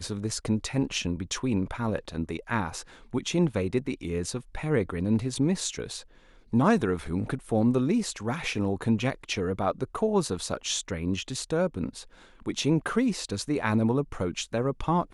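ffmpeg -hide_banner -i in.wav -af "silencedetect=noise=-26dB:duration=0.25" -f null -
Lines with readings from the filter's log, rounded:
silence_start: 2.78
silence_end: 3.14 | silence_duration: 0.36
silence_start: 5.97
silence_end: 6.54 | silence_duration: 0.57
silence_start: 11.98
silence_end: 12.48 | silence_duration: 0.50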